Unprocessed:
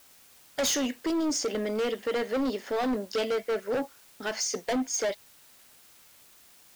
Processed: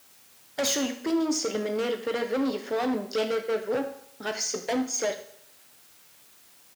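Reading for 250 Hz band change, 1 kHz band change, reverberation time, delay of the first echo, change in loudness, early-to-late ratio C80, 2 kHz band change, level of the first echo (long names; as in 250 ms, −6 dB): +1.0 dB, +0.5 dB, 0.70 s, 77 ms, +1.0 dB, 14.0 dB, +0.5 dB, −16.0 dB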